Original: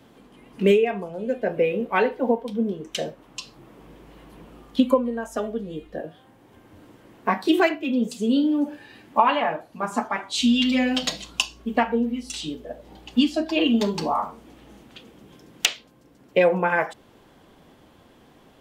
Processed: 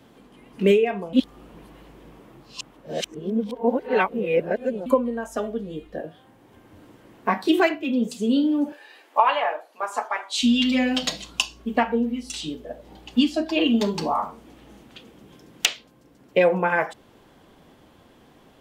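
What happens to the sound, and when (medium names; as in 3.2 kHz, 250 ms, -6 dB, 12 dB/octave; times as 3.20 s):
1.13–4.86 s: reverse
8.72–10.43 s: high-pass 440 Hz 24 dB/octave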